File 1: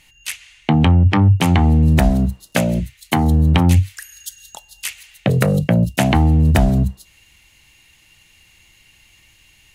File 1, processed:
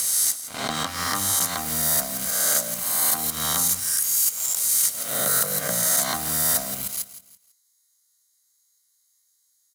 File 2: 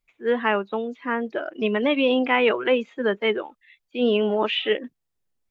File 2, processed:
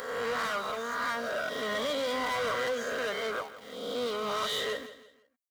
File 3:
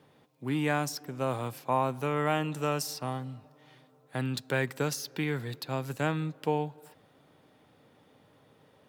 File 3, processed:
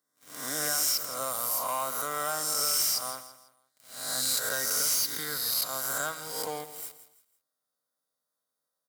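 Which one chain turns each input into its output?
reverse spectral sustain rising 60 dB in 1.14 s; Butterworth band-stop 2.6 kHz, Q 1; differentiator; waveshaping leveller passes 5; peaking EQ 360 Hz -13.5 dB 0.3 oct; comb of notches 860 Hz; compression 2:1, threshold -26 dBFS; feedback delay 166 ms, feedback 34%, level -14 dB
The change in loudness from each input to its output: -5.0 LU, -9.0 LU, +4.0 LU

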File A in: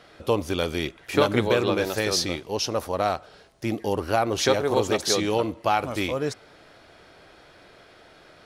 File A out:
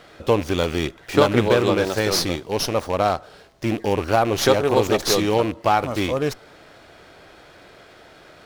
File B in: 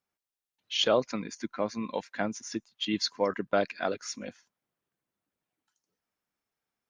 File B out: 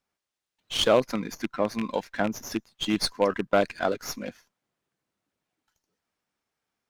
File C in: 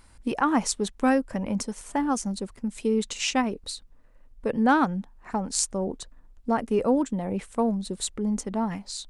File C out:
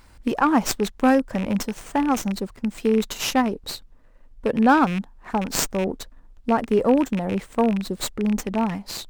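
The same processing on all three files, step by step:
rattle on loud lows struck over -31 dBFS, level -24 dBFS; dynamic bell 2.5 kHz, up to -5 dB, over -46 dBFS, Q 2.3; sliding maximum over 3 samples; trim +4.5 dB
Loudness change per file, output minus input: +4.0 LU, +4.0 LU, +4.0 LU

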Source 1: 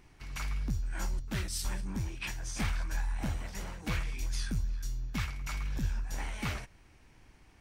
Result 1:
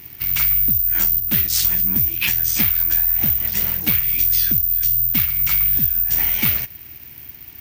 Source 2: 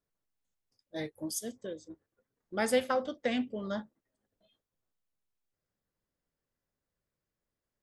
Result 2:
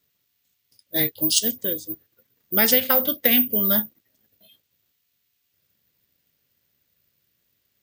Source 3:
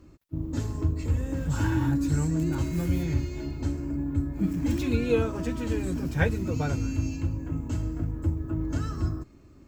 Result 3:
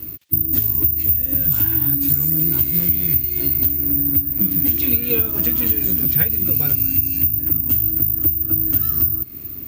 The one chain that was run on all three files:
peaking EQ 84 Hz +14.5 dB 2.8 oct; compression 10:1, threshold -25 dBFS; careless resampling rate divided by 3×, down none, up zero stuff; frequency weighting D; peak normalisation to -1.5 dBFS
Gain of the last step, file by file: +7.0 dB, +6.5 dB, +7.0 dB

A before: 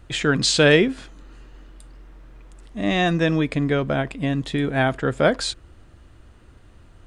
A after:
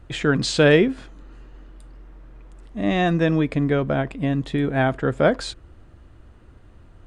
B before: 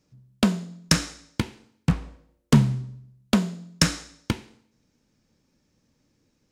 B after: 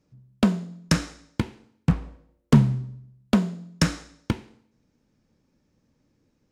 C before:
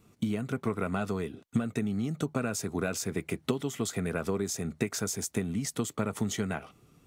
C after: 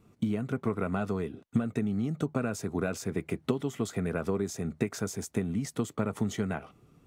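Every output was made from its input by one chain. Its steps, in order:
treble shelf 2.3 kHz -8.5 dB; trim +1 dB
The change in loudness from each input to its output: 0.0 LU, 0.0 LU, 0.0 LU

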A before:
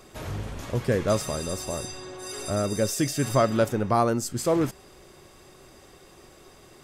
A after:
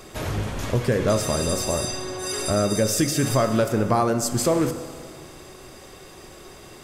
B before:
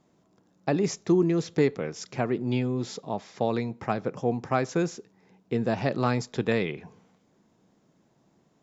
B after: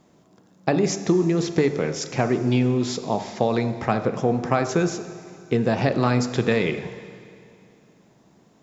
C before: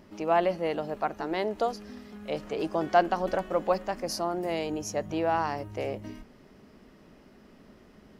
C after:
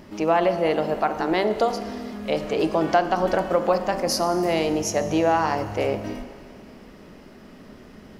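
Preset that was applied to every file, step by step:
de-hum 48.7 Hz, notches 31; compression 3:1, threshold -26 dBFS; Schroeder reverb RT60 2.4 s, combs from 25 ms, DRR 11 dB; normalise loudness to -23 LUFS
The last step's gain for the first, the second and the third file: +7.5 dB, +9.0 dB, +9.5 dB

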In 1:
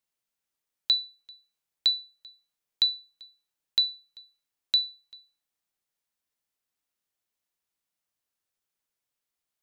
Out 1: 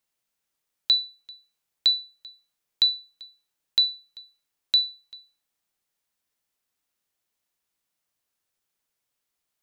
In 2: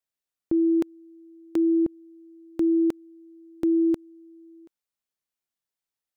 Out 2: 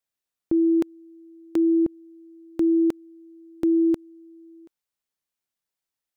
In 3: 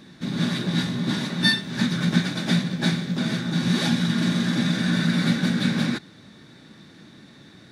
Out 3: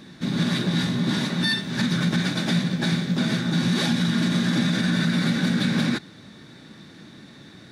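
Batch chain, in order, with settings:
peak limiter -16 dBFS; normalise loudness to -23 LUFS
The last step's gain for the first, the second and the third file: +4.5 dB, +1.5 dB, +2.5 dB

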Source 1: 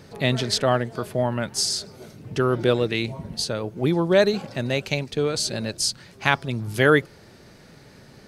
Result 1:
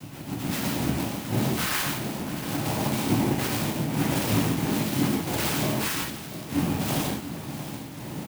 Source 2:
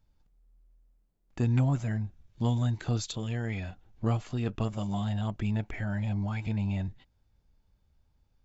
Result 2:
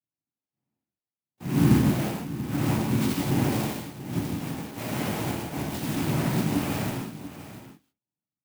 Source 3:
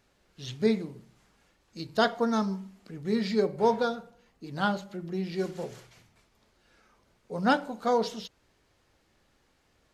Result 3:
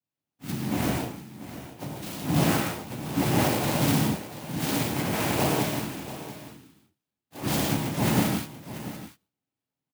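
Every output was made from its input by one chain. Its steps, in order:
bit-reversed sample order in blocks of 64 samples; gate -57 dBFS, range -33 dB; bass shelf 130 Hz +4.5 dB; reverse; compression 5:1, threshold -30 dBFS; reverse; peak limiter -25.5 dBFS; slow attack 171 ms; chorus voices 4, 0.39 Hz, delay 15 ms, depth 2.4 ms; noise-vocoded speech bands 4; delay 687 ms -13.5 dB; gated-style reverb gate 200 ms flat, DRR -2.5 dB; sampling jitter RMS 0.042 ms; normalise loudness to -27 LUFS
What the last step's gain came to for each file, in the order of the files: +12.5 dB, +10.5 dB, +13.5 dB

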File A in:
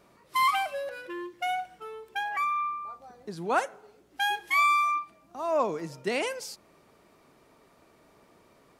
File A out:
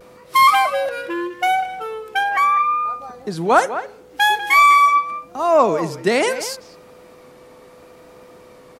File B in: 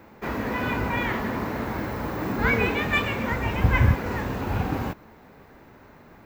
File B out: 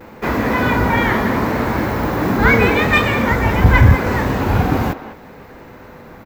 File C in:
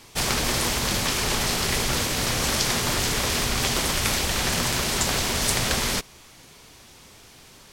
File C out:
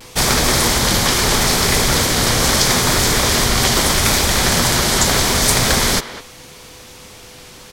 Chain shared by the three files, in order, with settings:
dynamic bell 2.7 kHz, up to -7 dB, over -48 dBFS, Q 5.3; speakerphone echo 200 ms, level -12 dB; in parallel at -7 dB: sine folder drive 7 dB, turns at -4 dBFS; on the sum: vibrato 0.77 Hz 43 cents; whistle 500 Hz -49 dBFS; peak normalisation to -1.5 dBFS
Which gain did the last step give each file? +4.5 dB, +2.5 dB, +1.5 dB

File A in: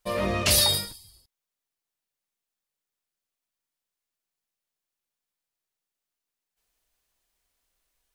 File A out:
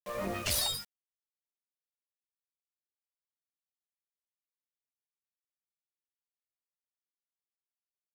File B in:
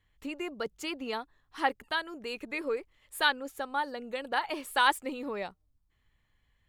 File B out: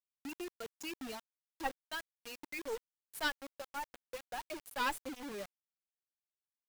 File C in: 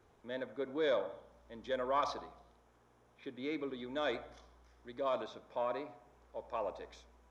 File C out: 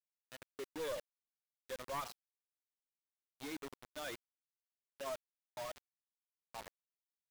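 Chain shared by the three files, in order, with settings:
expander on every frequency bin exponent 2; one-sided clip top -35 dBFS; bit crusher 7-bit; trim -4 dB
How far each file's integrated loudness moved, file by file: -10.0 LU, -9.5 LU, -8.0 LU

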